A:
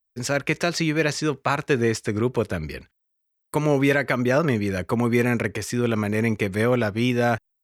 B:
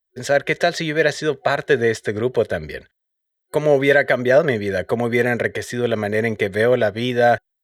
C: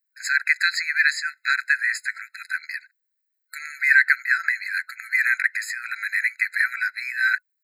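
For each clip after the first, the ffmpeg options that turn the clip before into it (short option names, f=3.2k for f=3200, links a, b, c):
-af "superequalizer=7b=2.51:8b=3.55:11b=2.82:13b=2.51,volume=-2dB"
-af "afftfilt=real='re*eq(mod(floor(b*sr/1024/1300),2),1)':imag='im*eq(mod(floor(b*sr/1024/1300),2),1)':win_size=1024:overlap=0.75,volume=4dB"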